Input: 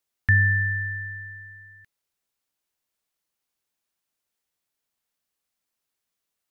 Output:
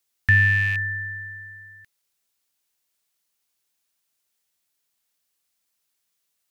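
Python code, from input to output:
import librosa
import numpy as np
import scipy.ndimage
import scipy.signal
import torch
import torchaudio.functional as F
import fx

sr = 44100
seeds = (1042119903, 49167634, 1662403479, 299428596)

y = fx.rattle_buzz(x, sr, strikes_db=-27.0, level_db=-26.0)
y = fx.high_shelf(y, sr, hz=2100.0, db=8.0)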